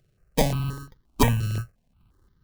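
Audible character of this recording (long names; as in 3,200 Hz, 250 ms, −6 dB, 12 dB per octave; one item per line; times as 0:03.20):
a buzz of ramps at a fixed pitch in blocks of 32 samples
sample-and-hold tremolo
aliases and images of a low sample rate 1,400 Hz, jitter 0%
notches that jump at a steady rate 5.7 Hz 250–2,500 Hz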